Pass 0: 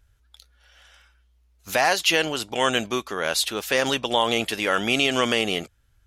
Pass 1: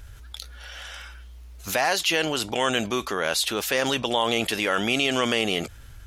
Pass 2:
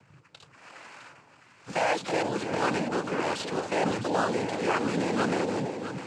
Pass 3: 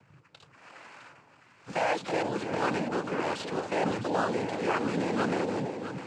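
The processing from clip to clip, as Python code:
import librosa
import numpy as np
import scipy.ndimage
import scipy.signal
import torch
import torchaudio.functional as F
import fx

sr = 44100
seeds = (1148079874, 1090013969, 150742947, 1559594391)

y1 = fx.env_flatten(x, sr, amount_pct=50)
y1 = F.gain(torch.from_numpy(y1), -4.0).numpy()
y2 = scipy.signal.medfilt(y1, 15)
y2 = fx.noise_vocoder(y2, sr, seeds[0], bands=8)
y2 = fx.echo_alternate(y2, sr, ms=329, hz=880.0, feedback_pct=66, wet_db=-6)
y2 = F.gain(torch.from_numpy(y2), -1.5).numpy()
y3 = fx.high_shelf(y2, sr, hz=4800.0, db=-6.0)
y3 = F.gain(torch.from_numpy(y3), -1.5).numpy()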